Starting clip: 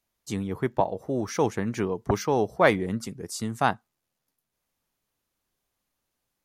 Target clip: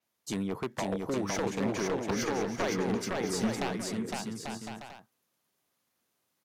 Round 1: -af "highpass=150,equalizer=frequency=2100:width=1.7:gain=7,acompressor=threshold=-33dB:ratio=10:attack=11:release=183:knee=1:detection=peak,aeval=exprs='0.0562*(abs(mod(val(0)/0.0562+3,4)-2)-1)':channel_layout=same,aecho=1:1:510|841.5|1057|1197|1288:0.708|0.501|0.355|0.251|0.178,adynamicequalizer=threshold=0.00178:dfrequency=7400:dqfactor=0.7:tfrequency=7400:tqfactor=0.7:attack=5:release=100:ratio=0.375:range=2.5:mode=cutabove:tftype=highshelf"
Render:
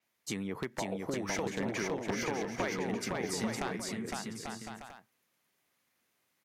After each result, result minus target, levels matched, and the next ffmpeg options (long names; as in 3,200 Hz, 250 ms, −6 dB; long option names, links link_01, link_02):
downward compressor: peak gain reduction +7 dB; 2,000 Hz band +3.0 dB
-af "highpass=150,equalizer=frequency=2100:width=1.7:gain=7,acompressor=threshold=-27dB:ratio=10:attack=11:release=183:knee=1:detection=peak,aeval=exprs='0.0562*(abs(mod(val(0)/0.0562+3,4)-2)-1)':channel_layout=same,aecho=1:1:510|841.5|1057|1197|1288:0.708|0.501|0.355|0.251|0.178,adynamicequalizer=threshold=0.00178:dfrequency=7400:dqfactor=0.7:tfrequency=7400:tqfactor=0.7:attack=5:release=100:ratio=0.375:range=2.5:mode=cutabove:tftype=highshelf"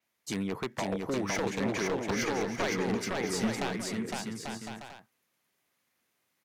2,000 Hz band +3.0 dB
-af "highpass=150,acompressor=threshold=-27dB:ratio=10:attack=11:release=183:knee=1:detection=peak,aeval=exprs='0.0562*(abs(mod(val(0)/0.0562+3,4)-2)-1)':channel_layout=same,aecho=1:1:510|841.5|1057|1197|1288:0.708|0.501|0.355|0.251|0.178,adynamicequalizer=threshold=0.00178:dfrequency=7400:dqfactor=0.7:tfrequency=7400:tqfactor=0.7:attack=5:release=100:ratio=0.375:range=2.5:mode=cutabove:tftype=highshelf"